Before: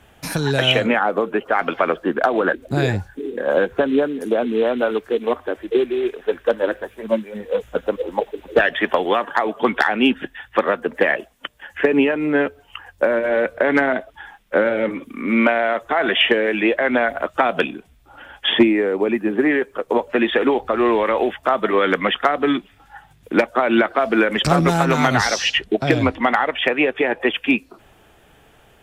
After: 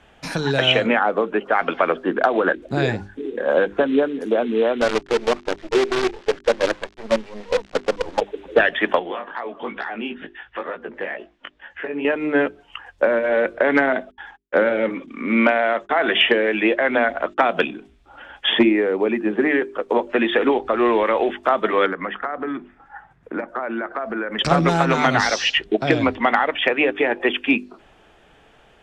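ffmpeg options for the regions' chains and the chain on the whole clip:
-filter_complex "[0:a]asettb=1/sr,asplit=3[s0][s1][s2];[s0]atrim=end=4.814[s3];[s1]atrim=start=4.81:end=8.21,asetpts=PTS-STARTPTS,afade=t=in:d=0.004:c=qsin,afade=t=out:st=3.396:d=0.004:c=qsin,acrusher=bits=4:dc=4:mix=0:aa=0.000001,adynamicsmooth=sensitivity=7.5:basefreq=7200[s4];[s2]atrim=start=8.206[s5];[s3][s4]acrossfade=d=0.004:c1=hsin:c2=qsin[s6];[s6][s5]acrossfade=d=0.004:c1=qsin:c2=hsin,asettb=1/sr,asplit=3[s7][s8][s9];[s7]atrim=end=8.994[s10];[s8]atrim=start=8.99:end=12.05,asetpts=PTS-STARTPTS,afade=t=in:d=0.004:c=qsin,afade=t=out:st=3.056:d=0.004:c=qsin,lowpass=4100,acompressor=threshold=0.0501:ratio=2:attack=3.2:release=140:knee=1:detection=peak,flanger=delay=16:depth=4.7:speed=2.2[s11];[s9]atrim=start=12.046[s12];[s10][s11]acrossfade=d=0.004:c1=hsin:c2=qsin[s13];[s13][s12]acrossfade=d=0.004:c1=qsin:c2=hsin,asettb=1/sr,asplit=3[s14][s15][s16];[s14]atrim=end=14.114[s17];[s15]atrim=start=14.11:end=17.46,asetpts=PTS-STARTPTS,afade=t=in:d=0.004:c=qsin,afade=t=out:st=3.346:d=0.004:c=qsin,agate=range=0.0126:threshold=0.00708:ratio=16:release=100:detection=peak,asoftclip=type=hard:threshold=0.531,lowpass=f=7900:w=0.5412,lowpass=f=7900:w=1.3066[s18];[s16]atrim=start=17.456[s19];[s17][s18]acrossfade=d=0.004:c1=hsin:c2=qsin[s20];[s20][s19]acrossfade=d=0.004:c1=qsin:c2=hsin,asettb=1/sr,asplit=3[s21][s22][s23];[s21]atrim=end=21.864[s24];[s22]atrim=start=21.86:end=24.39,asetpts=PTS-STARTPTS,afade=t=in:d=0.004:c=qsin,afade=t=out:st=2.526:d=0.004:c=qsin,highshelf=f=2300:t=q:w=1.5:g=-11.5,acompressor=threshold=0.0708:ratio=4:attack=3.2:release=140:knee=1:detection=peak[s25];[s23]atrim=start=24.386[s26];[s24][s25]acrossfade=d=0.004:c1=hsin:c2=qsin[s27];[s27][s26]acrossfade=d=0.004:c1=qsin:c2=hsin,lowpass=5800,equalizer=f=94:w=1.5:g=-7,bandreject=f=50:t=h:w=6,bandreject=f=100:t=h:w=6,bandreject=f=150:t=h:w=6,bandreject=f=200:t=h:w=6,bandreject=f=250:t=h:w=6,bandreject=f=300:t=h:w=6,bandreject=f=350:t=h:w=6,bandreject=f=400:t=h:w=6"

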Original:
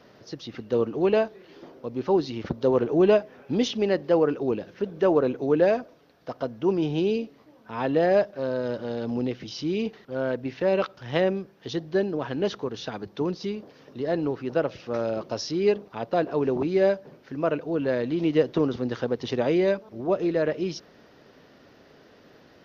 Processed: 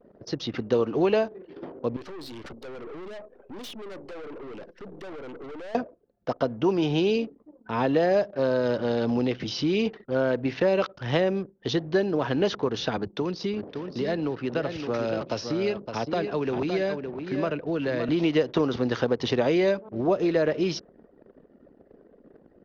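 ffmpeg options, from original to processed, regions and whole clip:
-filter_complex "[0:a]asettb=1/sr,asplit=3[s0][s1][s2];[s0]atrim=end=1.964[s3];[s1]atrim=start=1.96:end=5.75,asetpts=PTS-STARTPTS,afade=t=in:d=0.004:c=qsin,afade=t=out:st=3.786:d=0.004:c=qsin,acrossover=split=740|4400[s4][s5][s6];[s4]acompressor=threshold=0.0631:ratio=4[s7];[s5]acompressor=threshold=0.0141:ratio=4[s8];[s6]acompressor=threshold=0.00141:ratio=4[s9];[s7][s8][s9]amix=inputs=3:normalize=0,bass=f=250:g=-8,treble=f=4000:g=9,aeval=exprs='(tanh(178*val(0)+0.5)-tanh(0.5))/178':c=same[s10];[s2]atrim=start=5.746[s11];[s3][s10]acrossfade=d=0.004:c1=hsin:c2=qsin[s12];[s12][s11]acrossfade=d=0.004:c1=qsin:c2=hsin,asettb=1/sr,asplit=3[s13][s14][s15];[s13]atrim=end=12.974[s16];[s14]atrim=start=12.97:end=18.09,asetpts=PTS-STARTPTS,afade=t=in:d=0.004:c=qsin,afade=t=out:st=5.116:d=0.004:c=qsin,acrossover=split=190|1600[s17][s18][s19];[s17]acompressor=threshold=0.00631:ratio=4[s20];[s18]acompressor=threshold=0.02:ratio=4[s21];[s19]acompressor=threshold=0.00708:ratio=4[s22];[s20][s21][s22]amix=inputs=3:normalize=0,aecho=1:1:564:0.422,atrim=end_sample=225792[s23];[s15]atrim=start=18.086[s24];[s16][s23]acrossfade=d=0.004:c1=hsin:c2=qsin[s25];[s25][s24]acrossfade=d=0.004:c1=qsin:c2=hsin,anlmdn=0.0158,acrossover=split=630|5300[s26][s27][s28];[s26]acompressor=threshold=0.0316:ratio=4[s29];[s27]acompressor=threshold=0.0178:ratio=4[s30];[s28]acompressor=threshold=0.002:ratio=4[s31];[s29][s30][s31]amix=inputs=3:normalize=0,volume=2.24"

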